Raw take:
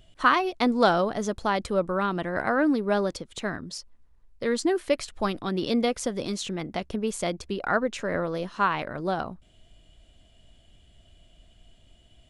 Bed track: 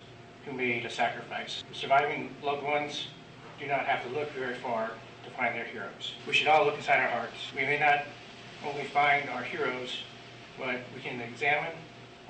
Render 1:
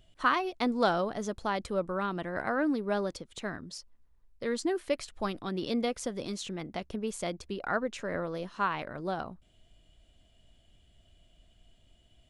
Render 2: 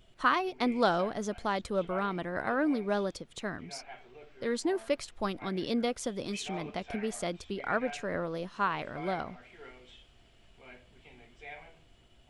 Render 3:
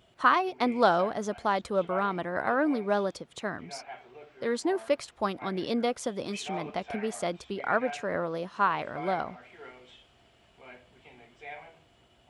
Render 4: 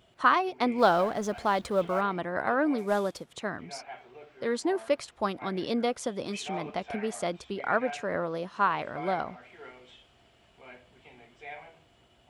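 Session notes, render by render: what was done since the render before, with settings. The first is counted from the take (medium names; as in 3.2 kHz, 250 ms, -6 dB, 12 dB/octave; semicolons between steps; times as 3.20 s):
trim -6 dB
add bed track -19 dB
high-pass 74 Hz; peaking EQ 870 Hz +5.5 dB 1.9 oct
0.78–2.01 s: companding laws mixed up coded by mu; 2.78–3.33 s: CVSD coder 64 kbps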